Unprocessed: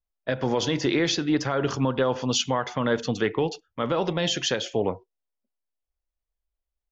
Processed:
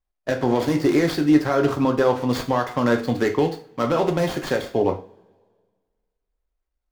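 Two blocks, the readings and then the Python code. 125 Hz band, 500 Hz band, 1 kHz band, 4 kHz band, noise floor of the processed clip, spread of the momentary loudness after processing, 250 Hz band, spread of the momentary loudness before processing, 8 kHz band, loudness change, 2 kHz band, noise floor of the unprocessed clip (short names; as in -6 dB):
+3.0 dB, +5.0 dB, +5.0 dB, -6.5 dB, -81 dBFS, 7 LU, +6.5 dB, 5 LU, n/a, +4.0 dB, +2.0 dB, under -85 dBFS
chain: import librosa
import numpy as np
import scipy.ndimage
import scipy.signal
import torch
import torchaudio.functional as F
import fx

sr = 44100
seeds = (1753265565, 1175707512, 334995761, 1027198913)

y = scipy.ndimage.median_filter(x, 15, mode='constant')
y = fx.rev_double_slope(y, sr, seeds[0], early_s=0.33, late_s=1.7, knee_db=-26, drr_db=3.5)
y = y * librosa.db_to_amplitude(4.0)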